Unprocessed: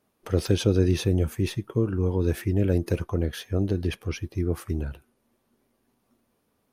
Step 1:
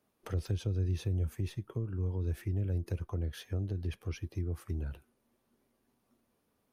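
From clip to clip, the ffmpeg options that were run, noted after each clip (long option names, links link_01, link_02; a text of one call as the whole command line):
ffmpeg -i in.wav -filter_complex "[0:a]acrossover=split=120[link_01][link_02];[link_02]acompressor=threshold=-35dB:ratio=5[link_03];[link_01][link_03]amix=inputs=2:normalize=0,volume=-5dB" out.wav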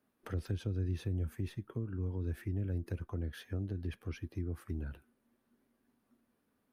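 ffmpeg -i in.wav -af "equalizer=frequency=250:width_type=o:width=0.67:gain=7,equalizer=frequency=1600:width_type=o:width=0.67:gain=6,equalizer=frequency=6300:width_type=o:width=0.67:gain=-4,volume=-4dB" out.wav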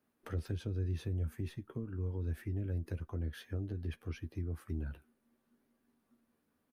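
ffmpeg -i in.wav -filter_complex "[0:a]asplit=2[link_01][link_02];[link_02]adelay=13,volume=-9dB[link_03];[link_01][link_03]amix=inputs=2:normalize=0,volume=-1.5dB" out.wav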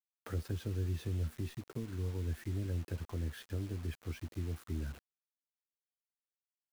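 ffmpeg -i in.wav -af "acrusher=bits=8:mix=0:aa=0.000001" out.wav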